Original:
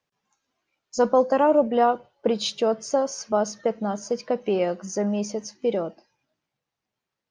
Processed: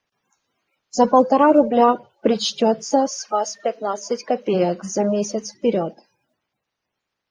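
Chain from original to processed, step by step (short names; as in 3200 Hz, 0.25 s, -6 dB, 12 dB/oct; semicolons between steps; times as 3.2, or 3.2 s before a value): bin magnitudes rounded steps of 30 dB; 3.08–4.53 HPF 840 Hz -> 240 Hz 12 dB/oct; gain +5.5 dB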